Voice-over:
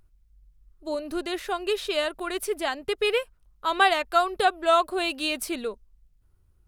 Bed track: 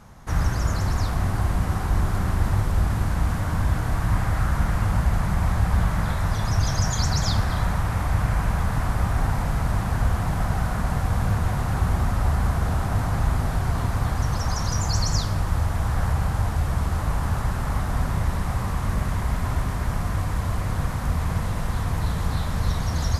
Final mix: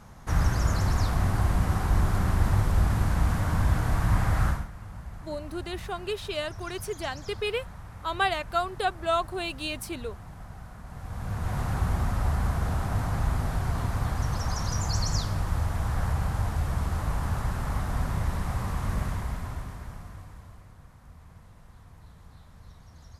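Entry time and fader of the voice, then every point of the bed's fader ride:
4.40 s, −5.5 dB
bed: 0:04.49 −1.5 dB
0:04.70 −19.5 dB
0:10.84 −19.5 dB
0:11.58 −4.5 dB
0:19.03 −4.5 dB
0:20.77 −26 dB

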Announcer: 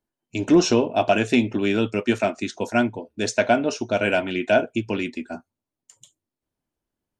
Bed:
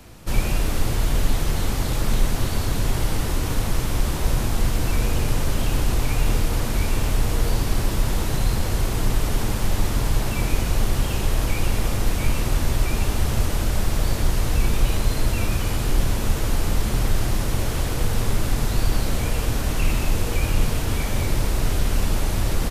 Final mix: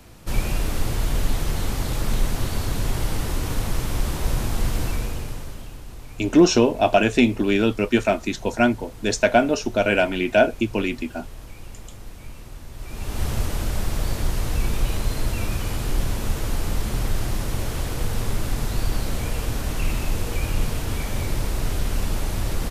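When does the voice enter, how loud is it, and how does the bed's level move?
5.85 s, +2.0 dB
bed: 0:04.82 −2 dB
0:05.80 −18 dB
0:12.71 −18 dB
0:13.23 −3 dB

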